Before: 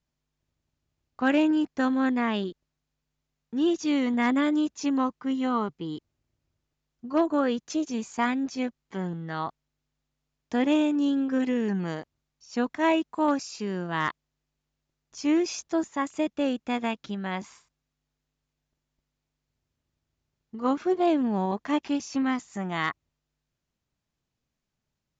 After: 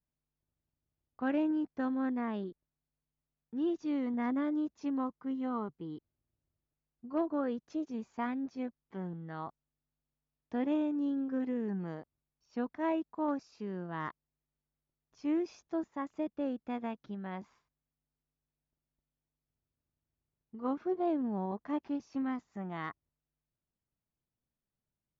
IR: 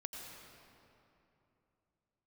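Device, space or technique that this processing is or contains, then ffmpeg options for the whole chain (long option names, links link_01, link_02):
through cloth: -af "lowpass=6500,lowpass=frequency=6500:width=0.5412,lowpass=frequency=6500:width=1.3066,highshelf=frequency=2200:gain=-13,adynamicequalizer=threshold=0.00178:dfrequency=2800:dqfactor=1.9:tfrequency=2800:tqfactor=1.9:attack=5:release=100:ratio=0.375:range=3.5:mode=cutabove:tftype=bell,volume=-8dB"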